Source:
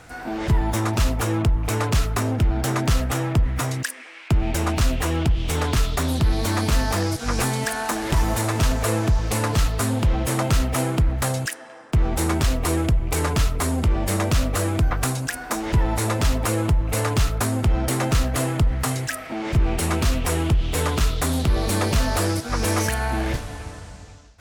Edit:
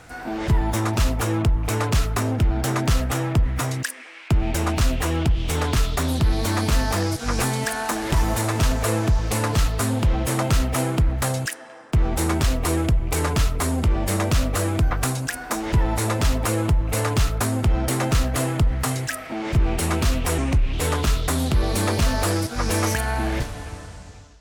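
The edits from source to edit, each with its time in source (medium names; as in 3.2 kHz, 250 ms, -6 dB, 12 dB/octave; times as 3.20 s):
20.38–20.67 s: speed 82%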